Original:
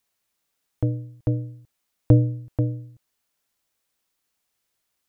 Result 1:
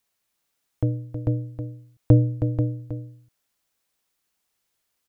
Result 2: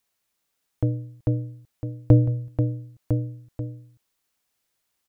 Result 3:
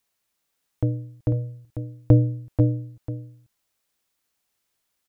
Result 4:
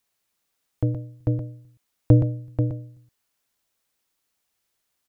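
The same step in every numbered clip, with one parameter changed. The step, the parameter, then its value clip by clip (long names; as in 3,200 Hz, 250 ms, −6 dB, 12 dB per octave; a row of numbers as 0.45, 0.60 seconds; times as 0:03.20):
single-tap delay, delay time: 318, 1,004, 496, 121 milliseconds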